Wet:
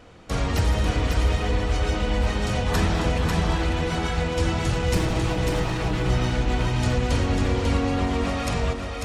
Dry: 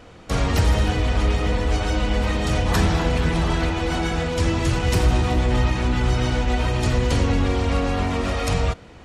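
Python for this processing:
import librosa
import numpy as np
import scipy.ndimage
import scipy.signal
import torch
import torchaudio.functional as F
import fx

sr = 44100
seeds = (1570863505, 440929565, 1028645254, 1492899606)

p1 = fx.lower_of_two(x, sr, delay_ms=6.2, at=(4.95, 6.09))
p2 = p1 + fx.echo_single(p1, sr, ms=545, db=-4.0, dry=0)
y = p2 * 10.0 ** (-3.5 / 20.0)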